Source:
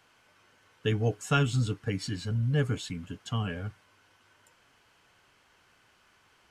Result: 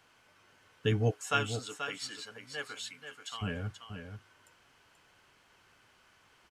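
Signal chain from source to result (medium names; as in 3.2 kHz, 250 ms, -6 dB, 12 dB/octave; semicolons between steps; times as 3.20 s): 1.10–3.41 s: high-pass 490 Hz -> 1.2 kHz 12 dB/octave; delay 483 ms -8.5 dB; trim -1 dB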